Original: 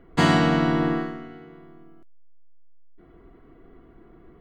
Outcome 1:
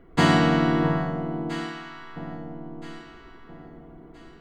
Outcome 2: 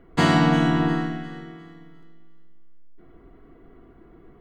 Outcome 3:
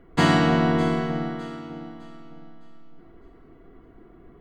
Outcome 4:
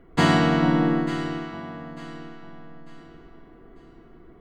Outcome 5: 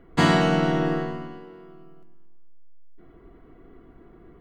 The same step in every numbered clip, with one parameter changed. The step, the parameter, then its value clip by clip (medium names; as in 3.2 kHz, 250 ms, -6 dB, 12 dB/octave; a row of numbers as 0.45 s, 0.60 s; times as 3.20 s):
echo whose repeats swap between lows and highs, time: 661 ms, 176 ms, 304 ms, 448 ms, 113 ms